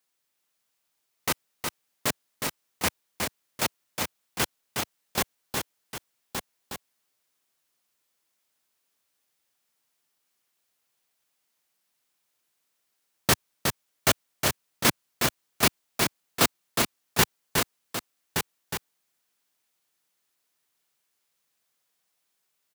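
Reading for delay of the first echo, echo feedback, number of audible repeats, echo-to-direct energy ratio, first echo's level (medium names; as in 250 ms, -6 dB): 364 ms, no regular repeats, 3, -2.0 dB, -5.0 dB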